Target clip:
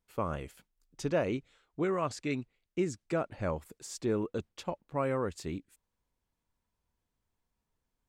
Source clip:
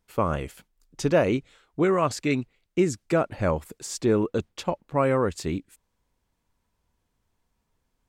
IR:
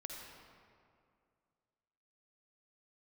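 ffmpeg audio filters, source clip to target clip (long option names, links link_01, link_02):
-filter_complex "[0:a]asettb=1/sr,asplit=3[link_01][link_02][link_03];[link_01]atrim=end=1.034[link_04];[link_02]atrim=start=1.03:end=3.52,asetpts=PTS-STARTPTS,afade=type=in:duration=0.004:curve=qsin,afade=type=out:start_time=2.486:duration=0.004:curve=qsin,lowpass=10000[link_05];[link_03]atrim=start=3.516[link_06];[link_04][link_05]acrossfade=duration=0.004:curve1=hsin:curve2=qsin[link_07];[link_07][link_06]acrossfade=duration=0.004:curve1=qsin:curve2=hsin,volume=-9dB"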